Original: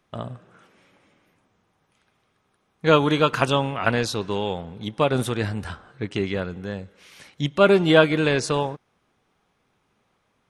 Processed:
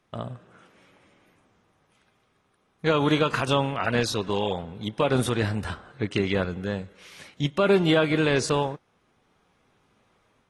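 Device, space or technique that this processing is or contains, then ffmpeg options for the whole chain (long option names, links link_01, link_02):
low-bitrate web radio: -af "dynaudnorm=framelen=740:gausssize=3:maxgain=4dB,alimiter=limit=-9.5dB:level=0:latency=1:release=72,volume=-1.5dB" -ar 32000 -c:a aac -b:a 32k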